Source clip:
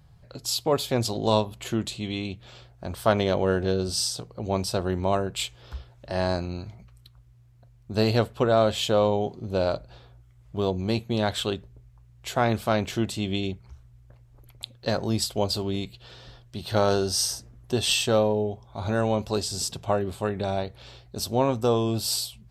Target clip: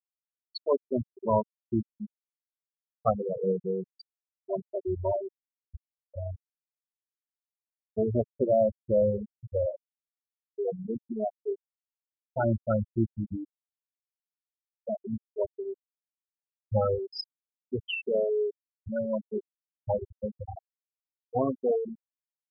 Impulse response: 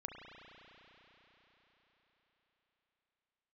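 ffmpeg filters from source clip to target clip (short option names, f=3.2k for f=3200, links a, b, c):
-af "afftfilt=real='re*pow(10,8/40*sin(2*PI*(1.5*log(max(b,1)*sr/1024/100)/log(2)-(-0.28)*(pts-256)/sr)))':imag='im*pow(10,8/40*sin(2*PI*(1.5*log(max(b,1)*sr/1024/100)/log(2)-(-0.28)*(pts-256)/sr)))':win_size=1024:overlap=0.75,afftfilt=real='re*gte(hypot(re,im),0.355)':imag='im*gte(hypot(re,im),0.355)':win_size=1024:overlap=0.75,volume=-2.5dB"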